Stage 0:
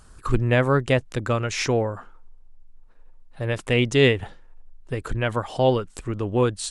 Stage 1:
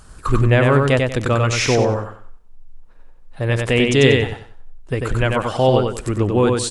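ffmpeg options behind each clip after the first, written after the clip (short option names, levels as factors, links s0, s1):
-filter_complex "[0:a]asplit=2[s0][s1];[s1]alimiter=limit=0.158:level=0:latency=1,volume=1[s2];[s0][s2]amix=inputs=2:normalize=0,aecho=1:1:94|188|282|376:0.668|0.18|0.0487|0.0132"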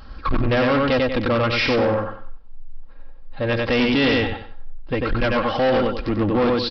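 -af "aecho=1:1:3.7:0.64,aresample=11025,asoftclip=type=tanh:threshold=0.141,aresample=44100,volume=1.26"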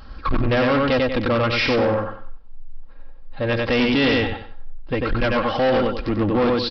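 -af anull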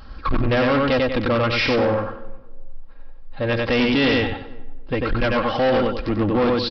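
-filter_complex "[0:a]asplit=2[s0][s1];[s1]adelay=361,lowpass=f=960:p=1,volume=0.0794,asplit=2[s2][s3];[s3]adelay=361,lowpass=f=960:p=1,volume=0.23[s4];[s0][s2][s4]amix=inputs=3:normalize=0"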